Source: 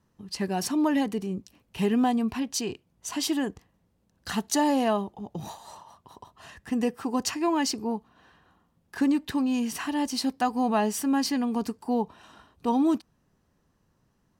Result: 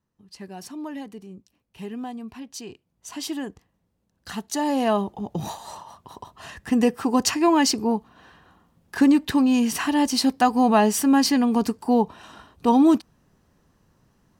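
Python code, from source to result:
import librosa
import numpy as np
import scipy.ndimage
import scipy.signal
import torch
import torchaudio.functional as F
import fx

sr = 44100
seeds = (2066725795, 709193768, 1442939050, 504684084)

y = fx.gain(x, sr, db=fx.line((2.2, -10.0), (3.26, -3.0), (4.51, -3.0), (5.11, 7.0)))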